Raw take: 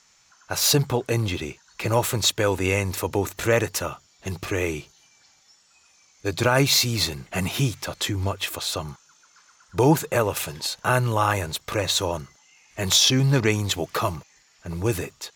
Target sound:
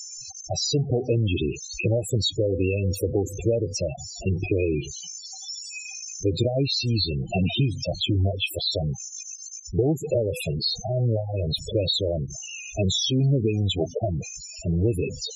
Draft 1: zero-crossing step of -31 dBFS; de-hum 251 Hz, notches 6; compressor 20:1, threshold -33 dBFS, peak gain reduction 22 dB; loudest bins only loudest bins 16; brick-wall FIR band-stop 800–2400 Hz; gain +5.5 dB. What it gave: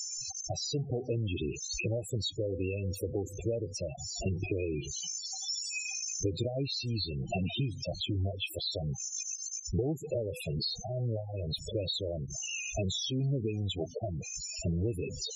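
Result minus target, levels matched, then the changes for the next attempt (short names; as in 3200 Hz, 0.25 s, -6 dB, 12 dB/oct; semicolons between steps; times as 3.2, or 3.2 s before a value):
compressor: peak gain reduction +10 dB
change: compressor 20:1, threshold -22.5 dBFS, peak gain reduction 12 dB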